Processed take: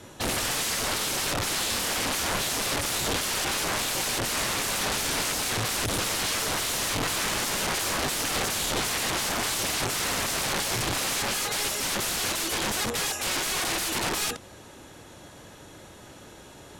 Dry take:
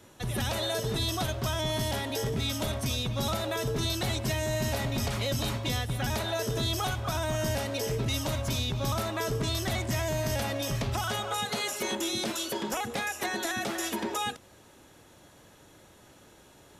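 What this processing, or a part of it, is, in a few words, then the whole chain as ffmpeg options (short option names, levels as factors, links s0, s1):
overflowing digital effects unit: -filter_complex "[0:a]asettb=1/sr,asplit=3[s0][s1][s2];[s0]atrim=end=10.424[s3];[s1]atrim=start=10.42:end=10.98,asetpts=PTS-STARTPTS,afade=t=in:d=0.004:c=qsin,afade=t=out:st=0.556:d=0.004:c=qsin,lowshelf=f=230:g=-6[s4];[s2]atrim=start=10.976[s5];[s3][s4]acrossfade=d=0.004:c1=hsin:c2=qsin[s6];[s6][s5]acrossfade=d=0.004:c1=qsin:c2=hsin,aeval=exprs='(mod(33.5*val(0)+1,2)-1)/33.5':c=same,lowpass=12000,volume=2.66"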